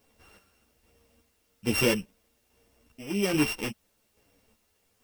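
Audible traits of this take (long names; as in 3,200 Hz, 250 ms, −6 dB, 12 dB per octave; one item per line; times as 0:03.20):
a buzz of ramps at a fixed pitch in blocks of 16 samples
chopped level 1.2 Hz, depth 60%, duty 45%
a quantiser's noise floor 12 bits, dither triangular
a shimmering, thickened sound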